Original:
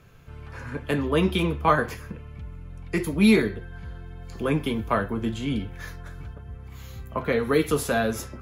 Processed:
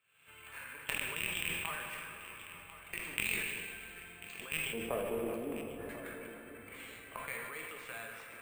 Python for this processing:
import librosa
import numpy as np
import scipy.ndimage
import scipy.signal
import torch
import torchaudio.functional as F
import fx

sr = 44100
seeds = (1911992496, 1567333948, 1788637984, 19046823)

y = fx.rattle_buzz(x, sr, strikes_db=-22.0, level_db=-11.0)
y = fx.recorder_agc(y, sr, target_db=-14.5, rise_db_per_s=66.0, max_gain_db=30)
y = fx.bandpass_q(y, sr, hz=fx.steps((0.0, 2800.0), (4.73, 490.0), (5.89, 2400.0)), q=2.7)
y = fx.cheby_harmonics(y, sr, harmonics=(3, 4, 8), levels_db=(-14, -33, -38), full_scale_db=-11.5)
y = fx.air_absorb(y, sr, metres=200.0)
y = y + 10.0 ** (-15.0 / 20.0) * np.pad(y, (int(1043 * sr / 1000.0), 0))[:len(y)]
y = fx.rev_plate(y, sr, seeds[0], rt60_s=4.1, hf_ratio=0.65, predelay_ms=0, drr_db=2.0)
y = np.repeat(y[::4], 4)[:len(y)]
y = fx.sustainer(y, sr, db_per_s=29.0)
y = F.gain(torch.from_numpy(y), -1.0).numpy()